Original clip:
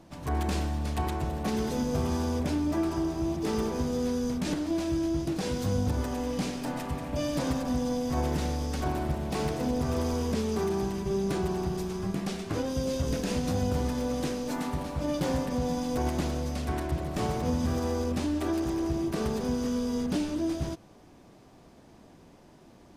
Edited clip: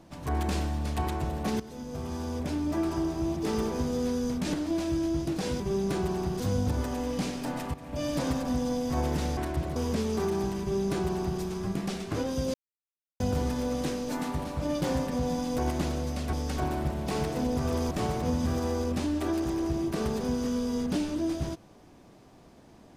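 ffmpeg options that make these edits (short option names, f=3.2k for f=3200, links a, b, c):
-filter_complex "[0:a]asplit=11[a][b][c][d][e][f][g][h][i][j][k];[a]atrim=end=1.6,asetpts=PTS-STARTPTS,afade=t=out:st=1.596:d=0.004:c=hsin:silence=0.16788[l];[b]atrim=start=1.6:end=5.602,asetpts=PTS-STARTPTS,afade=t=in:d=1.31:silence=0.16788[m];[c]atrim=start=10.998:end=11.802[n];[d]atrim=start=5.598:end=6.94,asetpts=PTS-STARTPTS,afade=t=out:st=1.338:d=0.004:c=hsin:silence=0.223872[o];[e]atrim=start=6.94:end=8.572,asetpts=PTS-STARTPTS,afade=t=in:d=0.35:silence=0.223872[p];[f]atrim=start=16.718:end=17.112[q];[g]atrim=start=10.148:end=12.93,asetpts=PTS-STARTPTS,afade=t=out:st=2.778:d=0.004:c=hsin[r];[h]atrim=start=12.93:end=13.59,asetpts=PTS-STARTPTS,volume=0[s];[i]atrim=start=13.59:end=16.722,asetpts=PTS-STARTPTS,afade=t=in:d=0.004:c=hsin[t];[j]atrim=start=8.568:end=10.152[u];[k]atrim=start=17.108[v];[l][m]concat=n=2:v=0:a=1[w];[w][n]acrossfade=d=0.004:c1=hsin:c2=hsin[x];[o][p]concat=n=2:v=0:a=1[y];[x][y]acrossfade=d=0.004:c1=hsin:c2=hsin[z];[z][q]acrossfade=d=0.004:c1=hsin:c2=hsin[aa];[r][s][t]concat=n=3:v=0:a=1[ab];[aa][ab]acrossfade=d=0.004:c1=hsin:c2=hsin[ac];[ac][u]acrossfade=d=0.004:c1=hsin:c2=hsin[ad];[ad][v]acrossfade=d=0.004:c1=hsin:c2=hsin"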